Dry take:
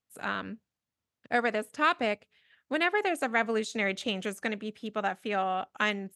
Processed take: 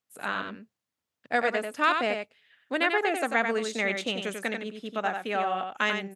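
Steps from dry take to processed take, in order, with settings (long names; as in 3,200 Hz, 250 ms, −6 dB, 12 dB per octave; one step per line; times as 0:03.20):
low-shelf EQ 130 Hz −11 dB
mains-hum notches 60/120 Hz
on a send: single-tap delay 92 ms −6 dB
on the sum: level +1.5 dB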